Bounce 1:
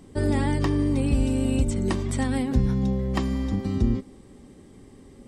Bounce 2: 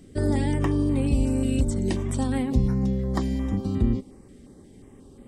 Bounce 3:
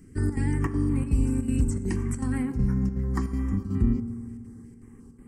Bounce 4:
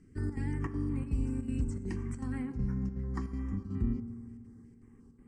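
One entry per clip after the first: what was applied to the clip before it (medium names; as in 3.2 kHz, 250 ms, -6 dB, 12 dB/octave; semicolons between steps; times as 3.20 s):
step-sequenced notch 5.6 Hz 940–5700 Hz
static phaser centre 1.5 kHz, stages 4; square tremolo 2.7 Hz, depth 65%, duty 80%; reverberation RT60 2.1 s, pre-delay 3 ms, DRR 10 dB
low-pass 6.2 kHz 12 dB/octave; trim -8.5 dB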